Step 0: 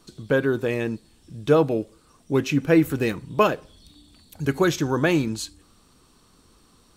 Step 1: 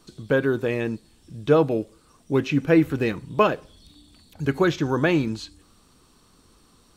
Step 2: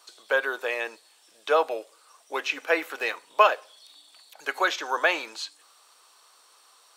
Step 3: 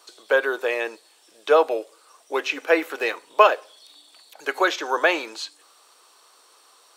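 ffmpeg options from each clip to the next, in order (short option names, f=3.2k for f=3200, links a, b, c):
-filter_complex "[0:a]acrossover=split=4800[a][b];[b]acompressor=threshold=-52dB:ratio=4:attack=1:release=60[c];[a][c]amix=inputs=2:normalize=0"
-af "highpass=f=620:w=0.5412,highpass=f=620:w=1.3066,volume=3.5dB"
-af "equalizer=f=360:w=1.1:g=7,volume=2dB"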